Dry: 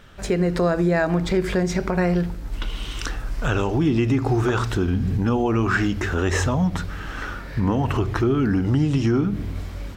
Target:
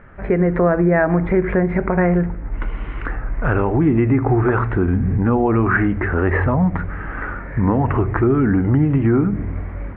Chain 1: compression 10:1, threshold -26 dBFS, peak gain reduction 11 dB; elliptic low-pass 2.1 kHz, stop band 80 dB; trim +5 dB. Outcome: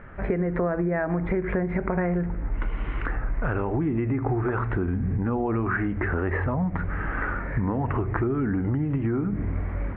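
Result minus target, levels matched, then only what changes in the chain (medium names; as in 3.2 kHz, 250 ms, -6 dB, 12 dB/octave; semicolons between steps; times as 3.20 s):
compression: peak gain reduction +11 dB
remove: compression 10:1, threshold -26 dBFS, peak gain reduction 11 dB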